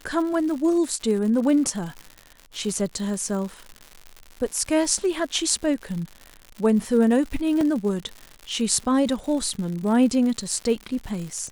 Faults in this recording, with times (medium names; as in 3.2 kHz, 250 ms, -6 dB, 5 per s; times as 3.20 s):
crackle 140 per s -31 dBFS
7.61 s: dropout 2.1 ms